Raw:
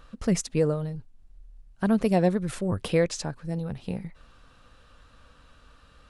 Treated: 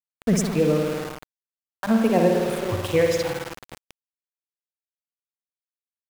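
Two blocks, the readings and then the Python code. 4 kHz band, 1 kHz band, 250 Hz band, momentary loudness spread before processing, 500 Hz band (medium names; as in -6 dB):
+5.0 dB, +5.5 dB, +3.0 dB, 13 LU, +5.5 dB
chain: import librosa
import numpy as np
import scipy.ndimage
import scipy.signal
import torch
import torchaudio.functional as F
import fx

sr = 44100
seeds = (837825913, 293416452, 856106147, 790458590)

y = fx.noise_reduce_blind(x, sr, reduce_db=29)
y = fx.rev_spring(y, sr, rt60_s=2.0, pass_ms=(53,), chirp_ms=30, drr_db=0.5)
y = np.where(np.abs(y) >= 10.0 ** (-31.0 / 20.0), y, 0.0)
y = F.gain(torch.from_numpy(y), 3.0).numpy()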